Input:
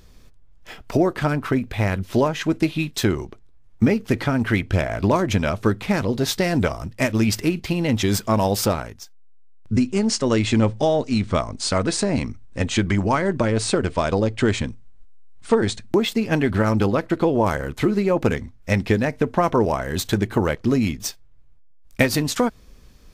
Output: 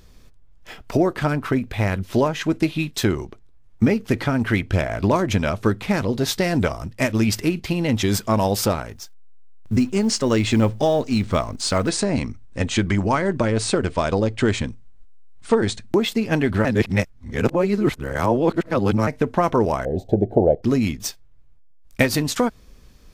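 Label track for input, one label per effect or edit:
8.880000	11.900000	G.711 law mismatch coded by mu
16.650000	19.070000	reverse
19.850000	20.630000	EQ curve 260 Hz 0 dB, 730 Hz +12 dB, 1100 Hz -29 dB, 3800 Hz -24 dB, 11000 Hz -29 dB

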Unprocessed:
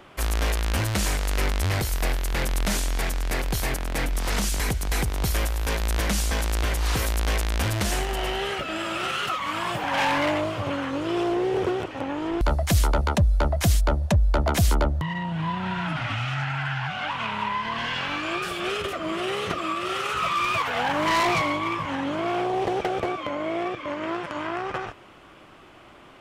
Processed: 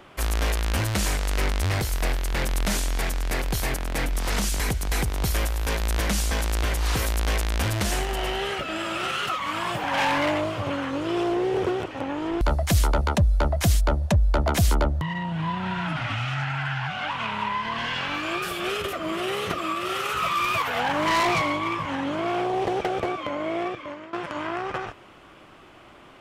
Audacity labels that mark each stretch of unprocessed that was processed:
1.170000	2.470000	Doppler distortion depth 0.1 ms
18.140000	20.800000	bell 13000 Hz +10 dB 0.47 oct
23.650000	24.130000	fade out, to -18 dB

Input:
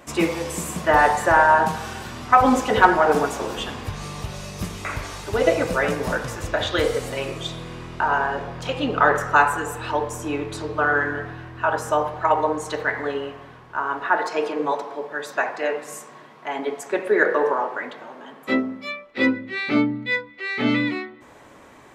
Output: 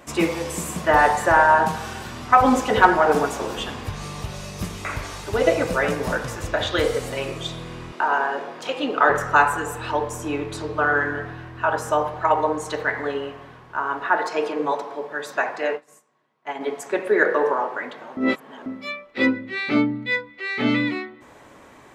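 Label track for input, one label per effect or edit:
7.920000	9.100000	HPF 240 Hz 24 dB/oct
15.750000	16.610000	upward expander 2.5:1, over -41 dBFS
18.170000	18.660000	reverse

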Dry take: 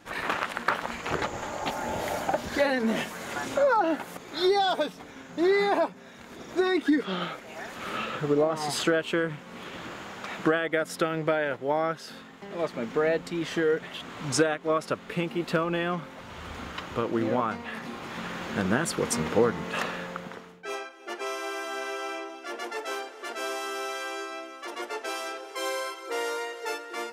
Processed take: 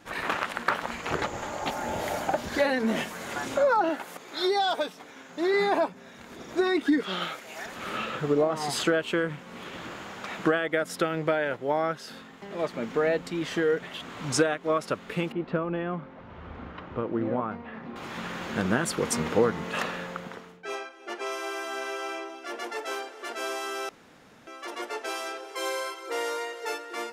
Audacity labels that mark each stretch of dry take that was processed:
3.890000	5.540000	HPF 380 Hz 6 dB/oct
7.030000	7.660000	tilt +2 dB/oct
15.320000	17.960000	tape spacing loss at 10 kHz 40 dB
20.570000	21.320000	high shelf 12000 Hz -9.5 dB
23.890000	24.470000	room tone

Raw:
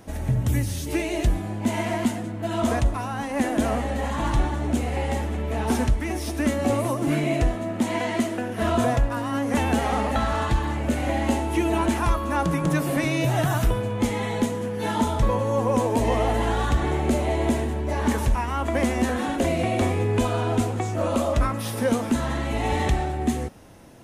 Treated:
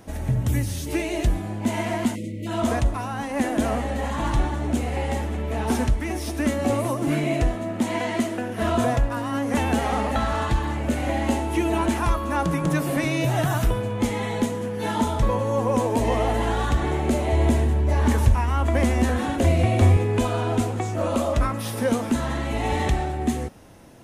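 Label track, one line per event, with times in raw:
2.150000	2.470000	spectral delete 640–1900 Hz
17.320000	19.970000	bell 90 Hz +12.5 dB

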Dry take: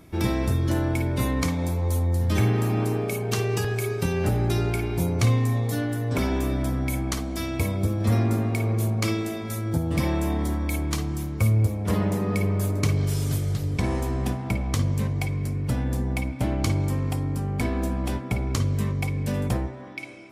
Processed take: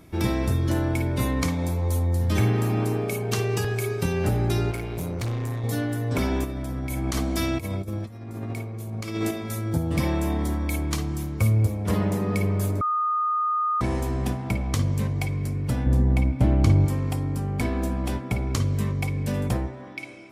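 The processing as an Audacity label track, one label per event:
4.710000	5.640000	tube stage drive 25 dB, bias 0.65
6.440000	9.310000	negative-ratio compressor -28 dBFS, ratio -0.5
12.810000	13.810000	bleep 1230 Hz -21 dBFS
15.860000	16.860000	tilt -2 dB/oct

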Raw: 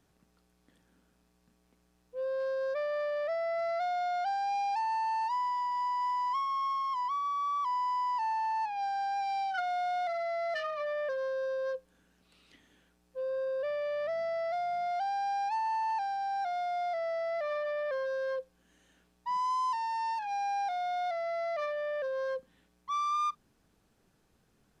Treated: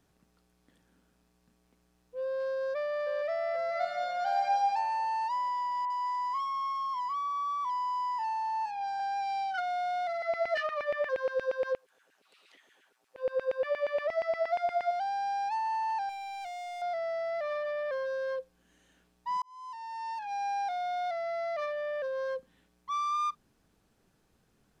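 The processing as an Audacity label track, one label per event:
2.580000	3.080000	echo throw 0.48 s, feedback 55%, level -8.5 dB
3.690000	4.580000	reverb throw, RT60 1.4 s, DRR 1 dB
5.850000	9.000000	three bands offset in time mids, highs, lows 50/330 ms, splits 490/2300 Hz
10.220000	14.910000	LFO high-pass saw down 8.5 Hz 350–2400 Hz
16.090000	16.820000	hard clip -39 dBFS
19.420000	20.470000	fade in

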